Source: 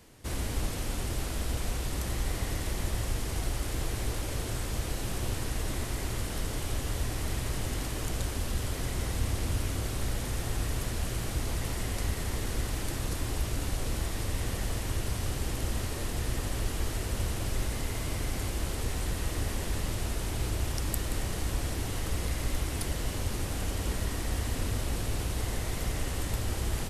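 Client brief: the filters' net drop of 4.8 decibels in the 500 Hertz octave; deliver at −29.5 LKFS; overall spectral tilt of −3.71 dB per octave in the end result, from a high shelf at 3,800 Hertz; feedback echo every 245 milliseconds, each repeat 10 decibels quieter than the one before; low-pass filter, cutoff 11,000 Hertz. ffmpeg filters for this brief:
ffmpeg -i in.wav -af "lowpass=11000,equalizer=frequency=500:width_type=o:gain=-6.5,highshelf=frequency=3800:gain=5.5,aecho=1:1:245|490|735|980:0.316|0.101|0.0324|0.0104,volume=3dB" out.wav

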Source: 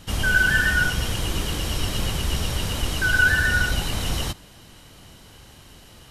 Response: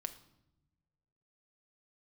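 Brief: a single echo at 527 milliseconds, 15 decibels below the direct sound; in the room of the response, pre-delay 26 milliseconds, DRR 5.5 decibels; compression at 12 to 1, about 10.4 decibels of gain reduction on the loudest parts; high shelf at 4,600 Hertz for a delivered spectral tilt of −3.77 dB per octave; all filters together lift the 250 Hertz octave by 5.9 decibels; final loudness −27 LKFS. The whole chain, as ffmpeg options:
-filter_complex "[0:a]equalizer=frequency=250:width_type=o:gain=8,highshelf=frequency=4600:gain=5,acompressor=threshold=-23dB:ratio=12,aecho=1:1:527:0.178,asplit=2[link_01][link_02];[1:a]atrim=start_sample=2205,adelay=26[link_03];[link_02][link_03]afir=irnorm=-1:irlink=0,volume=-3.5dB[link_04];[link_01][link_04]amix=inputs=2:normalize=0,volume=-0.5dB"

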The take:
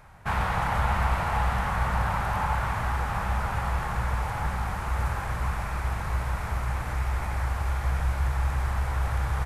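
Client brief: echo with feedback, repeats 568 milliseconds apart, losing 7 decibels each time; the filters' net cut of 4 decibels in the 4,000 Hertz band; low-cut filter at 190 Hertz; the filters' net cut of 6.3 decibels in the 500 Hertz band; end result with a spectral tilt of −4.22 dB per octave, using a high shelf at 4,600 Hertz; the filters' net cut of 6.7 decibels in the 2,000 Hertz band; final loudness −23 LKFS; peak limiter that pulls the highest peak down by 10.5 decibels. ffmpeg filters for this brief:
ffmpeg -i in.wav -af "highpass=190,equalizer=frequency=500:width_type=o:gain=-8,equalizer=frequency=2000:width_type=o:gain=-8.5,equalizer=frequency=4000:width_type=o:gain=-4.5,highshelf=frequency=4600:gain=5,alimiter=level_in=6dB:limit=-24dB:level=0:latency=1,volume=-6dB,aecho=1:1:568|1136|1704|2272|2840:0.447|0.201|0.0905|0.0407|0.0183,volume=15dB" out.wav

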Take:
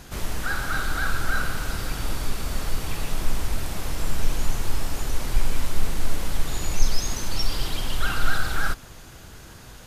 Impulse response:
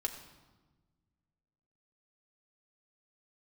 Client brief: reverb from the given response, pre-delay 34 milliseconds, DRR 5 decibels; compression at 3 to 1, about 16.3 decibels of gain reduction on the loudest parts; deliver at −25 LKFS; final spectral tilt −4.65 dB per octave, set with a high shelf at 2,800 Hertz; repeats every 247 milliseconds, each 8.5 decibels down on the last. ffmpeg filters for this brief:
-filter_complex "[0:a]highshelf=frequency=2800:gain=-5.5,acompressor=threshold=-33dB:ratio=3,aecho=1:1:247|494|741|988:0.376|0.143|0.0543|0.0206,asplit=2[link_01][link_02];[1:a]atrim=start_sample=2205,adelay=34[link_03];[link_02][link_03]afir=irnorm=-1:irlink=0,volume=-6.5dB[link_04];[link_01][link_04]amix=inputs=2:normalize=0,volume=14.5dB"

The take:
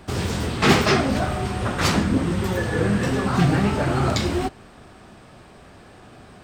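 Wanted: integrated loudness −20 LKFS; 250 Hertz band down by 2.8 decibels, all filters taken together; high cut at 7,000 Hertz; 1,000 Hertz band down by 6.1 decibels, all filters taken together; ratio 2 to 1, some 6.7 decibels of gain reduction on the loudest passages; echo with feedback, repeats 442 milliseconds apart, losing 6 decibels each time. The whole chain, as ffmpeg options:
ffmpeg -i in.wav -af "lowpass=7000,equalizer=frequency=250:width_type=o:gain=-3.5,equalizer=frequency=1000:width_type=o:gain=-8.5,acompressor=threshold=-27dB:ratio=2,aecho=1:1:442|884|1326|1768|2210|2652:0.501|0.251|0.125|0.0626|0.0313|0.0157,volume=7.5dB" out.wav

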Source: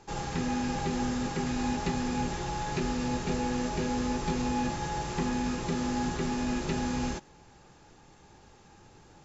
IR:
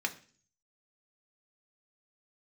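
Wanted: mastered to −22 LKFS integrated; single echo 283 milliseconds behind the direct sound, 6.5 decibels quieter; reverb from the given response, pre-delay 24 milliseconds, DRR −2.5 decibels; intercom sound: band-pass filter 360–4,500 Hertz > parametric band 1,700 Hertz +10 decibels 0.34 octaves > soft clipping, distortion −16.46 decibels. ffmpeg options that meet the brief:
-filter_complex "[0:a]aecho=1:1:283:0.473,asplit=2[link_01][link_02];[1:a]atrim=start_sample=2205,adelay=24[link_03];[link_02][link_03]afir=irnorm=-1:irlink=0,volume=-2.5dB[link_04];[link_01][link_04]amix=inputs=2:normalize=0,highpass=360,lowpass=4500,equalizer=frequency=1700:width_type=o:width=0.34:gain=10,asoftclip=threshold=-24.5dB,volume=9dB"

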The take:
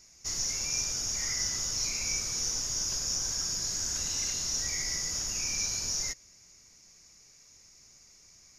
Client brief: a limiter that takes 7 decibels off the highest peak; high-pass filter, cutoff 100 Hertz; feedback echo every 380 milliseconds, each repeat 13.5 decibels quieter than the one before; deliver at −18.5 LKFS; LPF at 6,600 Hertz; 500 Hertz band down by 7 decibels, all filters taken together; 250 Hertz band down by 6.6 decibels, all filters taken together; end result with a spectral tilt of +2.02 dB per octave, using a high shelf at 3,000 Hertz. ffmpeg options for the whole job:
ffmpeg -i in.wav -af "highpass=100,lowpass=6600,equalizer=frequency=250:width_type=o:gain=-7.5,equalizer=frequency=500:width_type=o:gain=-7,highshelf=frequency=3000:gain=5.5,alimiter=limit=-23.5dB:level=0:latency=1,aecho=1:1:380|760:0.211|0.0444,volume=11.5dB" out.wav

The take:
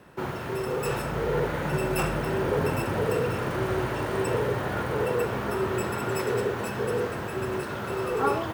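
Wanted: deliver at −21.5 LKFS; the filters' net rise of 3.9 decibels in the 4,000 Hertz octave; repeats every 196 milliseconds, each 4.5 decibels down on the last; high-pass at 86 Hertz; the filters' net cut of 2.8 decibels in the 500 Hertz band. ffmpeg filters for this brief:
ffmpeg -i in.wav -af "highpass=86,equalizer=frequency=500:width_type=o:gain=-3.5,equalizer=frequency=4000:width_type=o:gain=5.5,aecho=1:1:196|392|588|784|980|1176|1372|1568|1764:0.596|0.357|0.214|0.129|0.0772|0.0463|0.0278|0.0167|0.01,volume=6dB" out.wav

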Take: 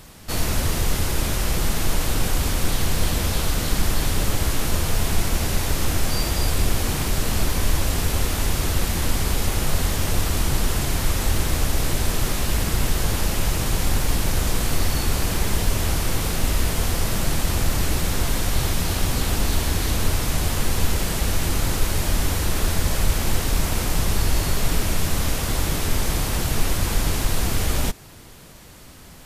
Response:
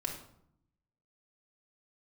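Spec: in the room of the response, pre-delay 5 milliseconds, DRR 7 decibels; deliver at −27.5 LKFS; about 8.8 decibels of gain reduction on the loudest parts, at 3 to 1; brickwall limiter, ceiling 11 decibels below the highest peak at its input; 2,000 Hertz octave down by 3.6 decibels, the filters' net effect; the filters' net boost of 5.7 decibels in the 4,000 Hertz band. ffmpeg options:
-filter_complex "[0:a]equalizer=frequency=2000:width_type=o:gain=-7.5,equalizer=frequency=4000:width_type=o:gain=9,acompressor=threshold=-26dB:ratio=3,alimiter=level_in=2dB:limit=-24dB:level=0:latency=1,volume=-2dB,asplit=2[link_01][link_02];[1:a]atrim=start_sample=2205,adelay=5[link_03];[link_02][link_03]afir=irnorm=-1:irlink=0,volume=-9dB[link_04];[link_01][link_04]amix=inputs=2:normalize=0,volume=8dB"

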